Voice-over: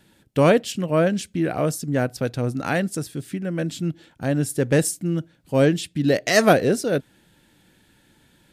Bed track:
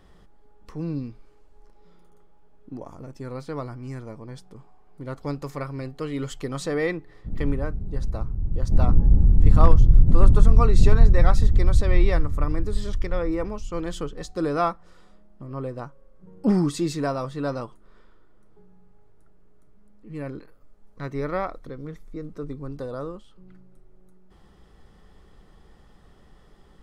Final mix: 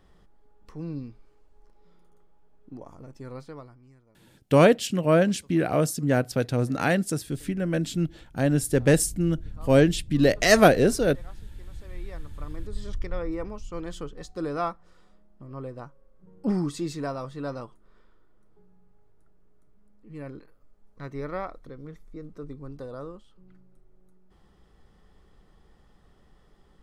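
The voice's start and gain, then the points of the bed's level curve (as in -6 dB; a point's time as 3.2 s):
4.15 s, -0.5 dB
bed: 3.38 s -5 dB
4.04 s -24.5 dB
11.68 s -24.5 dB
12.94 s -5.5 dB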